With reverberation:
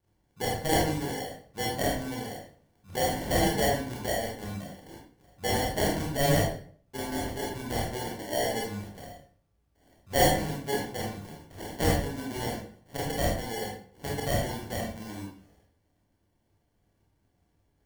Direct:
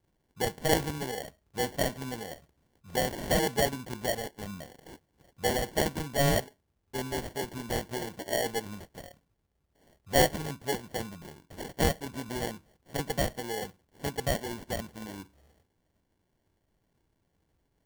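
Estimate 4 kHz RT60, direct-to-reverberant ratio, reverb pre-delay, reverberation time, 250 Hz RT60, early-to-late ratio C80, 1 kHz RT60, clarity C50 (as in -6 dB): 0.40 s, -3.0 dB, 24 ms, 0.50 s, 0.55 s, 7.0 dB, 0.45 s, 2.5 dB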